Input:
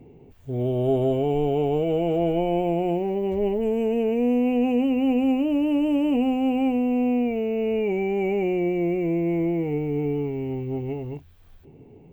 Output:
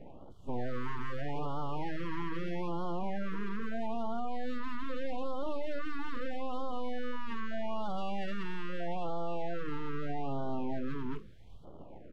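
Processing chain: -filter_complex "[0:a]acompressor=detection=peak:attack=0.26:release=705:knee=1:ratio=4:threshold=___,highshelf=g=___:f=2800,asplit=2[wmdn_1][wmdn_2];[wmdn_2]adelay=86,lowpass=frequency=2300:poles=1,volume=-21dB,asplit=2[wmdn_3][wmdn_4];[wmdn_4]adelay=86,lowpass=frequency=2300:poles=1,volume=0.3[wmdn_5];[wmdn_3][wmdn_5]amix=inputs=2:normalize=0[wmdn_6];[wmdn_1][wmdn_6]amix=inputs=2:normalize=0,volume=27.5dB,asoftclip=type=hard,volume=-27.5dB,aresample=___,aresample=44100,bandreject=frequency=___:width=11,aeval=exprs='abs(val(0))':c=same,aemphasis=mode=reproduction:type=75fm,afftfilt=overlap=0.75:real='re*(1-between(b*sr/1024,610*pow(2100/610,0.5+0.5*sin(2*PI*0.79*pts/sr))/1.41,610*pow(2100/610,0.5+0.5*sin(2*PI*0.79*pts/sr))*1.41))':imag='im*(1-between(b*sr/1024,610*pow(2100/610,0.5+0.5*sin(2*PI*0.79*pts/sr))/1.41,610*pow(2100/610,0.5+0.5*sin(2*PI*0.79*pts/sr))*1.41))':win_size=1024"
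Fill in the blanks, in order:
-26dB, 7.5, 32000, 2600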